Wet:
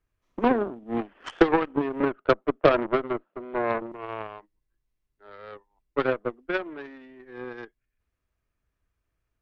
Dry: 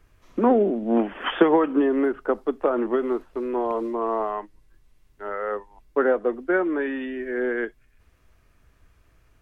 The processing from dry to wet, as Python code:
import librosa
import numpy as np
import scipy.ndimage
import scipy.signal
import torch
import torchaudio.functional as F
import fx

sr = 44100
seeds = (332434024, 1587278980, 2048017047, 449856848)

y = fx.cabinet(x, sr, low_hz=180.0, low_slope=24, high_hz=3200.0, hz=(190.0, 320.0, 610.0, 1300.0), db=(7, 5, 10, 7), at=(2.0, 3.92))
y = fx.cheby_harmonics(y, sr, harmonics=(2, 7), levels_db=(-13, -18), full_scale_db=-3.5)
y = y * 10.0 ** (-1.0 / 20.0)